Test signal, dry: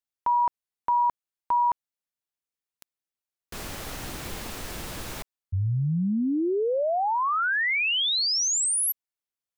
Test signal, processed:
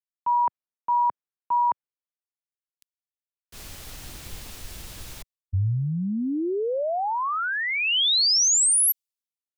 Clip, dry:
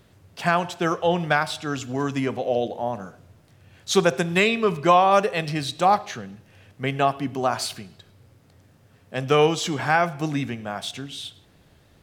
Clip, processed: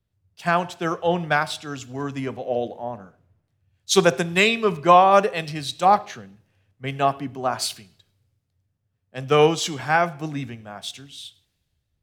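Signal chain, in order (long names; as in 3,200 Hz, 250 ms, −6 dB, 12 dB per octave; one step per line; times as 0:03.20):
multiband upward and downward expander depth 70%
level −1 dB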